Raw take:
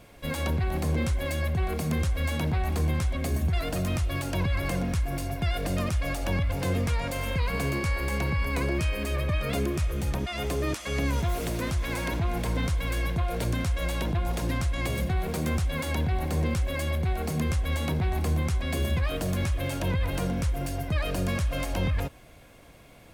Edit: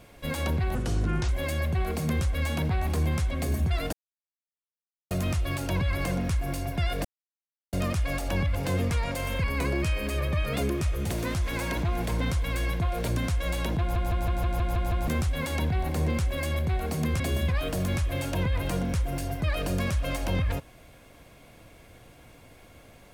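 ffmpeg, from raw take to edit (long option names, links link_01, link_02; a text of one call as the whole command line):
ffmpeg -i in.wav -filter_complex "[0:a]asplit=16[link_01][link_02][link_03][link_04][link_05][link_06][link_07][link_08][link_09][link_10][link_11][link_12][link_13][link_14][link_15][link_16];[link_01]atrim=end=0.754[link_17];[link_02]atrim=start=0.75:end=1.11,asetpts=PTS-STARTPTS,asetrate=29547,aresample=44100[link_18];[link_03]atrim=start=1.106:end=3.75,asetpts=PTS-STARTPTS,afade=type=out:start_time=2.64:duration=0.004:curve=hsin,apad=pad_dur=1.18[link_19];[link_04]atrim=start=3.75:end=5.69,asetpts=PTS-STARTPTS,afade=type=in:duration=0.004:curve=hsin,afade=type=out:start_time=1.936:duration=0.004:curve=hsin,apad=pad_dur=0.68[link_20];[link_05]atrim=start=5.69:end=7.402,asetpts=PTS-STARTPTS,afade=type=in:duration=0.004:curve=hsin[link_21];[link_06]atrim=start=8.398:end=10.062[link_22];[link_07]atrim=start=11.458:end=14.322[link_23];[link_08]atrim=start=14.158:end=14.322[link_24];[link_09]atrim=start=14.158:end=14.322[link_25];[link_10]atrim=start=14.158:end=14.322[link_26];[link_11]atrim=start=14.158:end=14.322[link_27];[link_12]atrim=start=14.158:end=14.322[link_28];[link_13]atrim=start=14.158:end=14.322[link_29];[link_14]atrim=start=14.158:end=14.322[link_30];[link_15]atrim=start=15.438:end=17.562[link_31];[link_16]atrim=start=18.678[link_32];[link_17][link_18]acrossfade=duration=0.004:curve1=hsin:curve2=hsin[link_33];[link_19][link_20][link_21]concat=n=3:v=0:a=1[link_34];[link_33][link_34]acrossfade=duration=0.004:curve1=hsin:curve2=hsin[link_35];[link_35][link_22]acrossfade=duration=0.004:curve1=hsin:curve2=hsin[link_36];[link_36][link_23]acrossfade=duration=0.004:curve1=hsin:curve2=hsin[link_37];[link_37][link_24]acrossfade=duration=0.004:curve1=hsin:curve2=hsin[link_38];[link_38][link_25]acrossfade=duration=0.004:curve1=hsin:curve2=hsin[link_39];[link_39][link_26]acrossfade=duration=0.004:curve1=hsin:curve2=hsin[link_40];[link_40][link_27]acrossfade=duration=0.004:curve1=hsin:curve2=hsin[link_41];[link_41][link_28]acrossfade=duration=0.004:curve1=hsin:curve2=hsin[link_42];[link_42][link_29]acrossfade=duration=0.004:curve1=hsin:curve2=hsin[link_43];[link_43][link_30]acrossfade=duration=0.004:curve1=hsin:curve2=hsin[link_44];[link_44][link_31]acrossfade=duration=0.004:curve1=hsin:curve2=hsin[link_45];[link_45][link_32]acrossfade=duration=0.004:curve1=hsin:curve2=hsin" out.wav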